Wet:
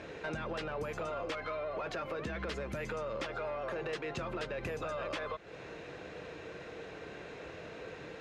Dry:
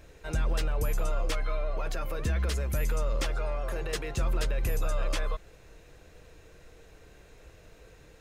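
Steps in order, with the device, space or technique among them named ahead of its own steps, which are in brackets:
AM radio (band-pass filter 170–3,400 Hz; downward compressor 5 to 1, threshold −47 dBFS, peak gain reduction 15.5 dB; soft clipping −40 dBFS, distortion −21 dB)
level +11.5 dB

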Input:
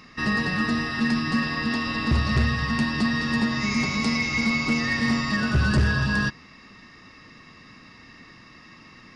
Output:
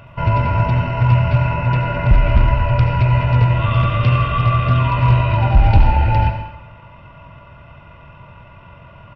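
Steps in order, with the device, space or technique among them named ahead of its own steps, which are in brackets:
monster voice (pitch shifter −11 semitones; low-shelf EQ 210 Hz +7 dB; convolution reverb RT60 0.90 s, pre-delay 69 ms, DRR 6 dB)
level +4.5 dB

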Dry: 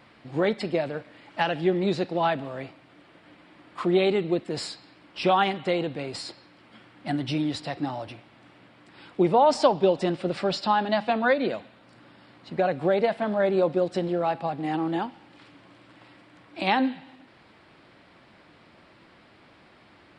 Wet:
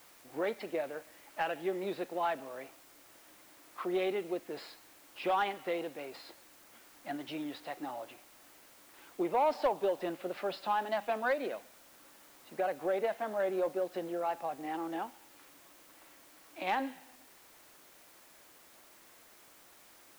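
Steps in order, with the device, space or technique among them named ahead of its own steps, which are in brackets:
tape answering machine (band-pass filter 380–2,800 Hz; soft clipping −14 dBFS, distortion −20 dB; tape wow and flutter; white noise bed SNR 23 dB)
level −7 dB

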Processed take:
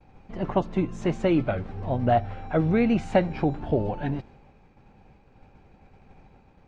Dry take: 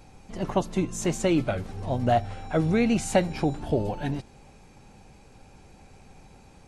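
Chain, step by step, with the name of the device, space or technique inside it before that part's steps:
hearing-loss simulation (low-pass filter 2,500 Hz 12 dB per octave; downward expander −46 dBFS)
level +1 dB

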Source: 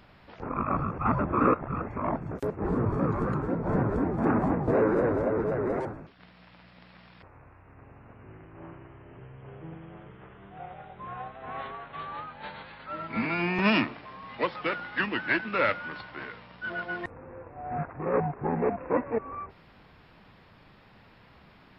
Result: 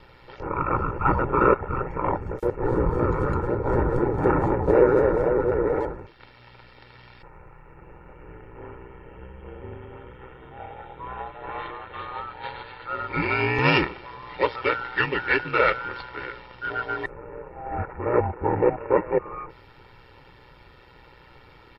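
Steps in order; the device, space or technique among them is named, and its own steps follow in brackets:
ring-modulated robot voice (ring modulation 61 Hz; comb filter 2.2 ms, depth 67%)
0:05.38–0:05.99: low-pass filter 3,500 Hz 6 dB per octave
level +6.5 dB

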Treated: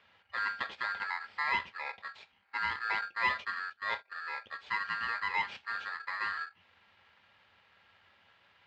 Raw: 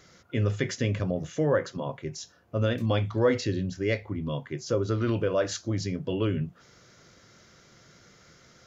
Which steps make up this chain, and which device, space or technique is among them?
ring modulator pedal into a guitar cabinet (ring modulator with a square carrier 1,500 Hz; loudspeaker in its box 88–3,600 Hz, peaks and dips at 89 Hz +6 dB, 140 Hz −10 dB, 300 Hz −10 dB, 820 Hz +5 dB, 1,200 Hz −3 dB, 2,400 Hz +6 dB)
0:03.01–0:04.15: noise gate −31 dBFS, range −17 dB
level −8 dB

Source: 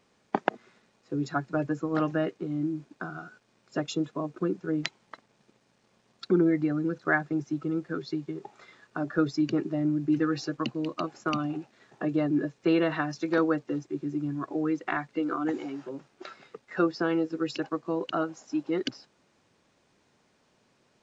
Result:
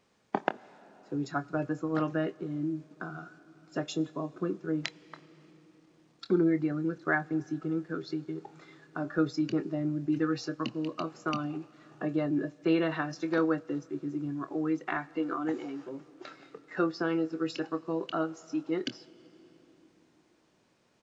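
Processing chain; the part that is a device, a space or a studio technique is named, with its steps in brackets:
compressed reverb return (on a send at −14 dB: convolution reverb RT60 2.8 s, pre-delay 30 ms + downward compressor, threshold −35 dBFS, peak gain reduction 16 dB)
on the sum: double-tracking delay 25 ms −12 dB
level −3 dB

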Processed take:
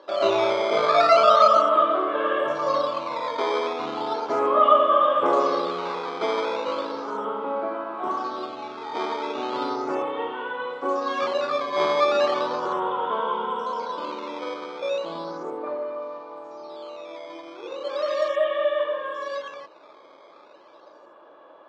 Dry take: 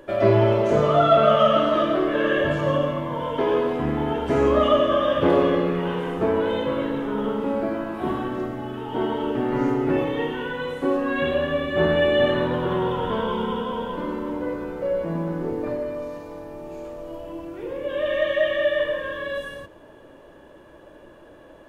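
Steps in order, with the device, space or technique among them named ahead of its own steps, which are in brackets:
circuit-bent sampling toy (sample-and-hold swept by an LFO 9×, swing 160% 0.36 Hz; loudspeaker in its box 510–4,200 Hz, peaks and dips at 820 Hz +3 dB, 1,200 Hz +9 dB, 1,800 Hz −9 dB, 2,800 Hz −6 dB)

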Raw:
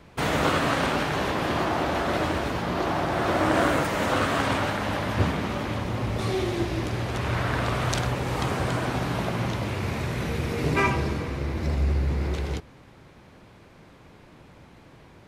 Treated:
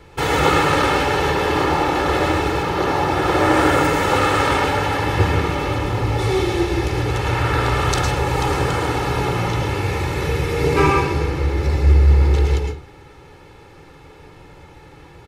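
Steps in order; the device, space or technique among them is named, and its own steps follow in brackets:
microphone above a desk (comb filter 2.3 ms, depth 70%; convolution reverb RT60 0.40 s, pre-delay 104 ms, DRR 2 dB)
level +4 dB

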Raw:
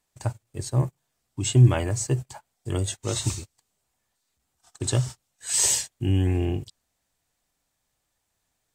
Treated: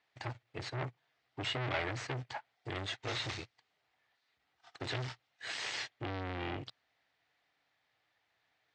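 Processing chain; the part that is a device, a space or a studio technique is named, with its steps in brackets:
guitar amplifier (tube saturation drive 35 dB, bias 0.65; bass and treble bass −14 dB, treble −5 dB; loudspeaker in its box 81–4,500 Hz, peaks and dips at 120 Hz +5 dB, 220 Hz −7 dB, 380 Hz −4 dB, 550 Hz −5 dB, 1,000 Hz −4 dB, 2,000 Hz +5 dB)
level +7.5 dB

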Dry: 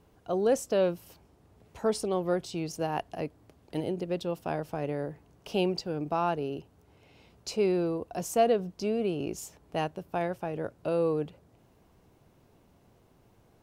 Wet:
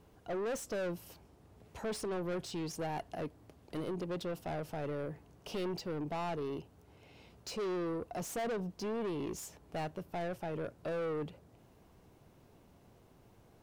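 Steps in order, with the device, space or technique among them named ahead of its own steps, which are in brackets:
saturation between pre-emphasis and de-emphasis (high-shelf EQ 3,600 Hz +9.5 dB; soft clipping −33.5 dBFS, distortion −5 dB; high-shelf EQ 3,600 Hz −9.5 dB)

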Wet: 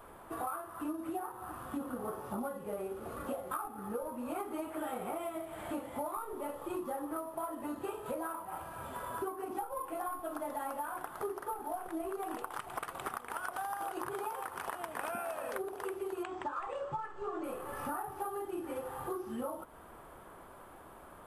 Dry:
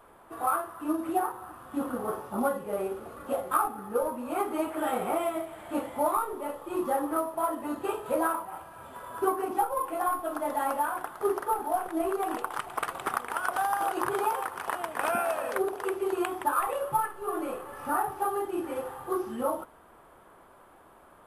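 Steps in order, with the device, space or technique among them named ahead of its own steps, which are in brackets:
0:16.23–0:17.44: Butterworth low-pass 8,000 Hz 72 dB per octave
ASMR close-microphone chain (low-shelf EQ 190 Hz +5 dB; downward compressor 6 to 1, threshold −38 dBFS, peak gain reduction 17 dB; high-shelf EQ 9,600 Hz +4 dB)
level +1.5 dB

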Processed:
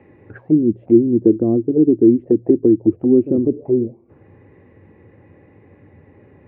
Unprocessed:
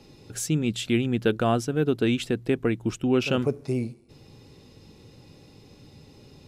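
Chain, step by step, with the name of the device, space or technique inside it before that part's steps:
envelope filter bass rig (envelope-controlled low-pass 320–2,000 Hz down, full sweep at −21.5 dBFS; loudspeaker in its box 79–2,200 Hz, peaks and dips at 91 Hz +8 dB, 140 Hz −5 dB, 340 Hz +4 dB, 550 Hz +4 dB, 1,400 Hz −9 dB)
0:01.94–0:03.49: parametric band 1,900 Hz +5.5 dB 0.46 octaves
level +2 dB

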